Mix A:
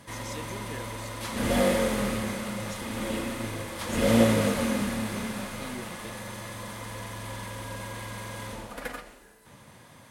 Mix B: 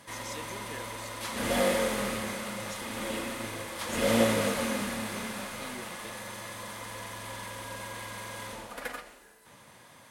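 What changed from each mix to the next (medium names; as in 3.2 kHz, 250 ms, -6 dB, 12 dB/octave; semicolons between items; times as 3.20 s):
master: add bass shelf 290 Hz -9.5 dB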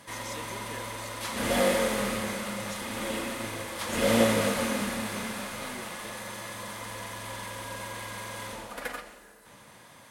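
background: send +9.5 dB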